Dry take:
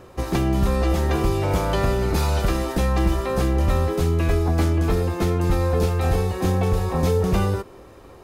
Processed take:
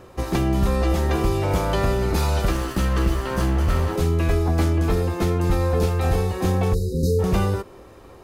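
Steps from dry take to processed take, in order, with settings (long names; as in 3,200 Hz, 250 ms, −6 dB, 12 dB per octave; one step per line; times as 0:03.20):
0:02.51–0:03.96: lower of the sound and its delayed copy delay 0.65 ms
0:06.74–0:07.19: time-frequency box erased 530–3,700 Hz
hum removal 141.2 Hz, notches 5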